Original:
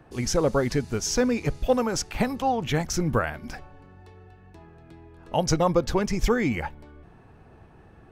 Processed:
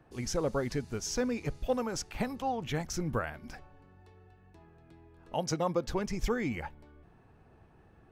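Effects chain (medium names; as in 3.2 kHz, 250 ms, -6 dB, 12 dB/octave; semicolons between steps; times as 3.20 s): 5.34–5.88 s: high-pass 130 Hz; trim -8.5 dB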